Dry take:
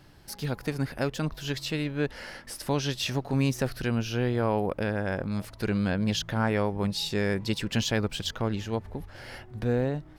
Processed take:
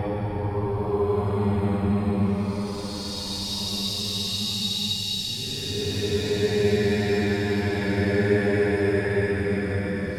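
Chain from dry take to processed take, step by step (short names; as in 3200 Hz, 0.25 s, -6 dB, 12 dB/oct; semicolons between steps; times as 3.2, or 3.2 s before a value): non-linear reverb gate 0.24 s falling, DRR -6 dB; Paulstretch 15×, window 0.10 s, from 6.75; gain -4.5 dB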